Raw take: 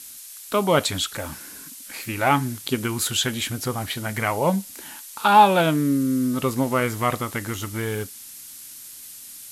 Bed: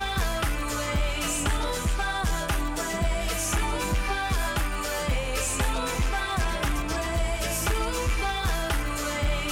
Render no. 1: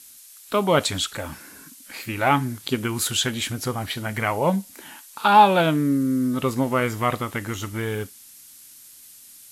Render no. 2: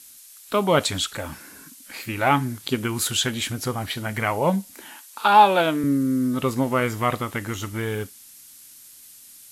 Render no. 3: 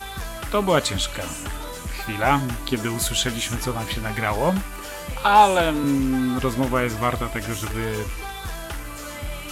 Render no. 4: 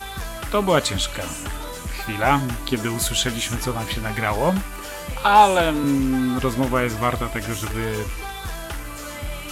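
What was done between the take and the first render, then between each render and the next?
noise reduction from a noise print 6 dB
0:04.85–0:05.84: high-pass filter 260 Hz
mix in bed −5.5 dB
level +1 dB

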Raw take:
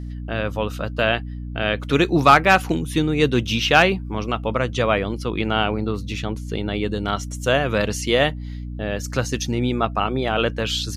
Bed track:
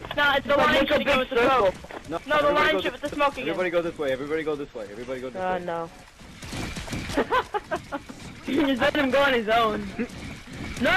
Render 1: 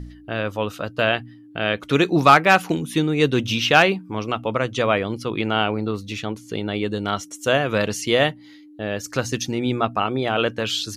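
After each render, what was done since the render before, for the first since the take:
hum removal 60 Hz, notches 4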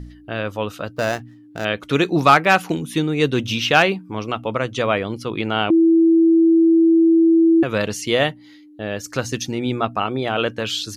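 0:00.93–0:01.65: running median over 15 samples
0:05.70–0:07.63: beep over 329 Hz −10 dBFS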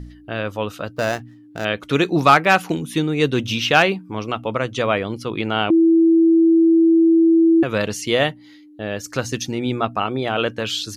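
no processing that can be heard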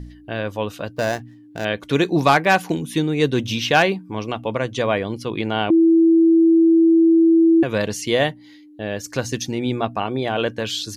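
notch filter 1,300 Hz, Q 5.7
dynamic equaliser 2,700 Hz, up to −4 dB, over −36 dBFS, Q 3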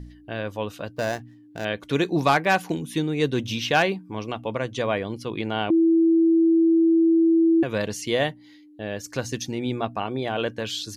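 level −4.5 dB

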